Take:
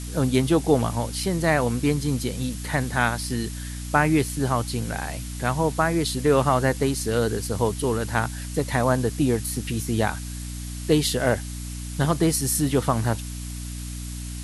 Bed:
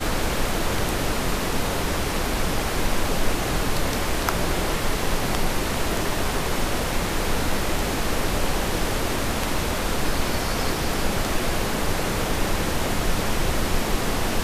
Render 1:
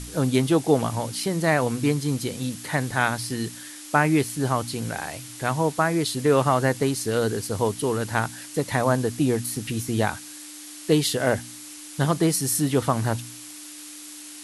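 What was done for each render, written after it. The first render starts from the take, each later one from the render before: de-hum 60 Hz, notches 4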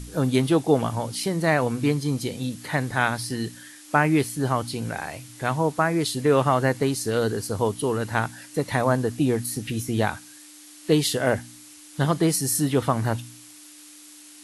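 noise print and reduce 6 dB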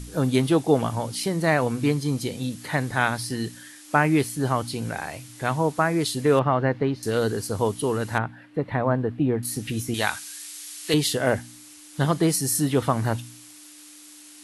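6.39–7.03 s: distance through air 330 m; 8.18–9.43 s: distance through air 500 m; 9.94–10.94 s: tilt shelf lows -9 dB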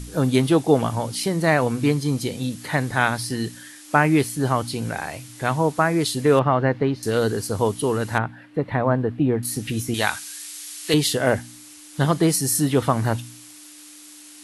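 trim +2.5 dB

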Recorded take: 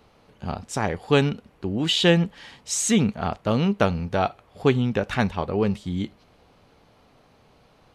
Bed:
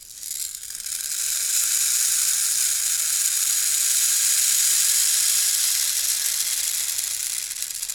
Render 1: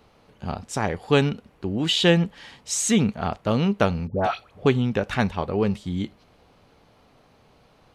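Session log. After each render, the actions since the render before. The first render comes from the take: 4.07–4.66 s: phase dispersion highs, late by 122 ms, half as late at 1.1 kHz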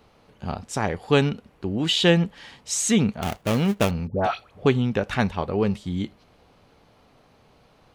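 3.22–3.91 s: dead-time distortion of 0.28 ms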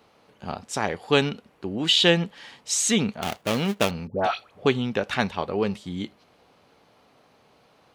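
high-pass 250 Hz 6 dB/octave; dynamic bell 3.8 kHz, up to +4 dB, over -42 dBFS, Q 1.1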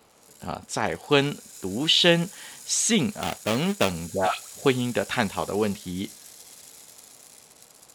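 add bed -23.5 dB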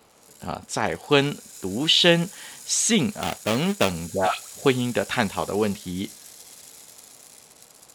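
trim +1.5 dB

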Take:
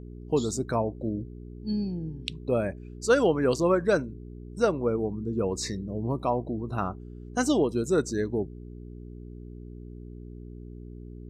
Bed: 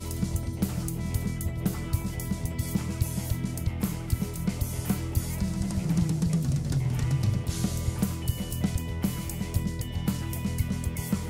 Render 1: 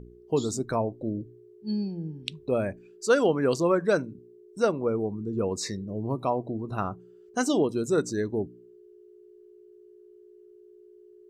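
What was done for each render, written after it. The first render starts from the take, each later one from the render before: de-hum 60 Hz, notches 5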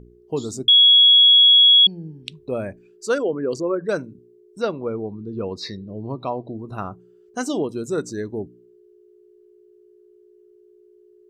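0.68–1.87 s: bleep 3.34 kHz -8.5 dBFS; 3.18–3.89 s: resonances exaggerated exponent 1.5; 4.61–6.56 s: resonant high shelf 5.7 kHz -11 dB, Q 3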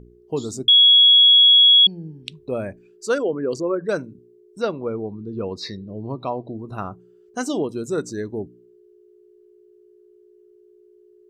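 no audible change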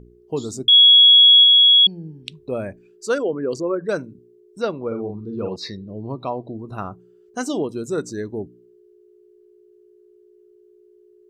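0.69–1.44 s: doubling 32 ms -10 dB; 4.87–5.56 s: doubling 48 ms -5 dB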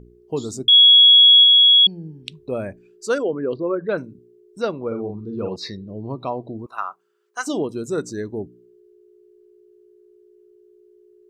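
3.52–3.98 s: steep low-pass 3.9 kHz 72 dB/octave; 6.66–7.47 s: resonant high-pass 1.1 kHz, resonance Q 2.1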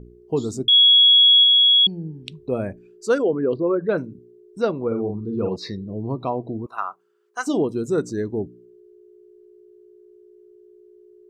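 tilt shelf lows +3.5 dB, about 1.2 kHz; band-stop 580 Hz, Q 16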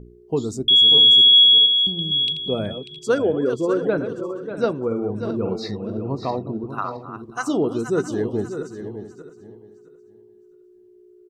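backward echo that repeats 332 ms, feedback 45%, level -10 dB; delay 592 ms -10 dB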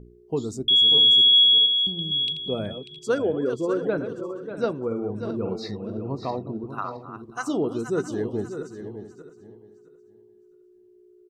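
trim -4 dB

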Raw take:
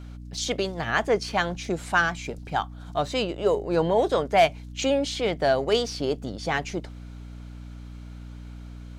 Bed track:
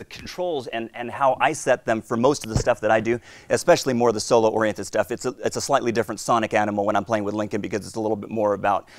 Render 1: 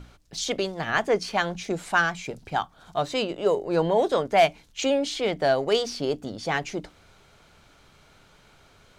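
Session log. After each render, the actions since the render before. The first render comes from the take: hum notches 60/120/180/240/300 Hz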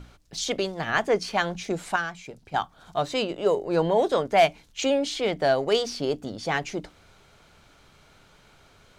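1.96–2.54 s: gain -7 dB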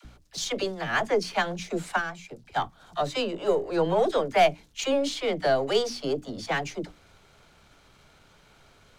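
partial rectifier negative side -3 dB; phase dispersion lows, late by 50 ms, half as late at 490 Hz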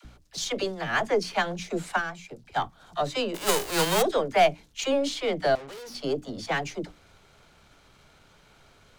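3.34–4.01 s: formants flattened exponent 0.3; 5.55–5.95 s: valve stage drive 40 dB, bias 0.75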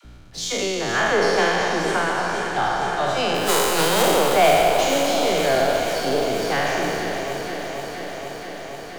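spectral sustain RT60 2.58 s; on a send: echo whose repeats swap between lows and highs 238 ms, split 1.3 kHz, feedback 88%, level -7.5 dB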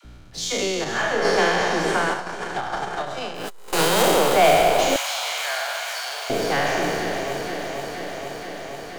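0.84–1.25 s: detune thickener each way 33 cents; 2.13–3.73 s: transformer saturation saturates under 340 Hz; 4.96–6.30 s: high-pass 930 Hz 24 dB/octave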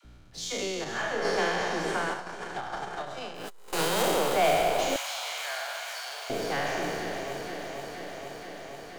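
trim -8 dB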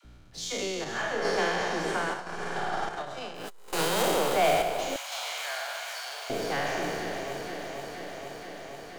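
2.23–2.89 s: flutter echo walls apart 9.1 m, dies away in 1.4 s; 4.62–5.12 s: gain -4 dB

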